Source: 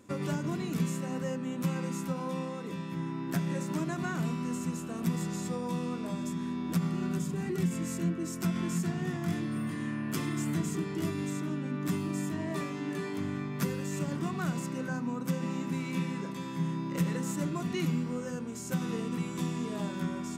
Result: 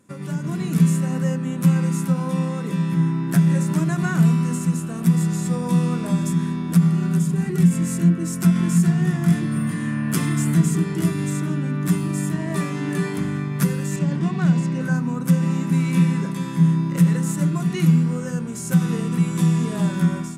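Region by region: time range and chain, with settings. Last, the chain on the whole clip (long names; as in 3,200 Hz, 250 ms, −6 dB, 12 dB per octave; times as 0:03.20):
0:13.96–0:14.81: band-pass filter 100–5,100 Hz + parametric band 1,300 Hz −8 dB 0.33 octaves
whole clip: graphic EQ with 15 bands 160 Hz +12 dB, 1,600 Hz +4 dB, 10,000 Hz +10 dB; automatic gain control gain up to 12.5 dB; mains-hum notches 50/100/150/200/250/300/350 Hz; level −4 dB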